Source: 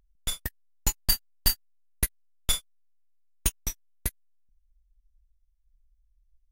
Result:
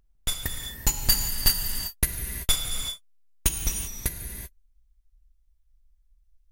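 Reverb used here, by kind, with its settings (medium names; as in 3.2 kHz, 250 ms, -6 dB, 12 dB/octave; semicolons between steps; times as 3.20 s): gated-style reverb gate 410 ms flat, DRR 3 dB; trim +2.5 dB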